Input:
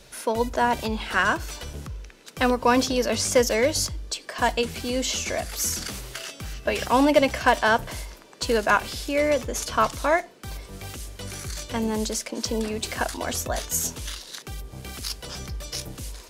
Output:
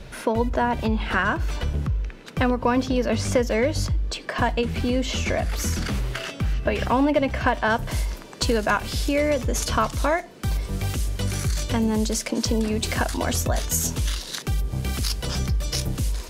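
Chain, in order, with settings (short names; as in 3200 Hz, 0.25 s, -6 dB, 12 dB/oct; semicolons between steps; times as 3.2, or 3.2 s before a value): tone controls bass +8 dB, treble -12 dB, from 7.69 s treble -1 dB; compressor 2.5:1, threshold -29 dBFS, peak gain reduction 11.5 dB; gain +7 dB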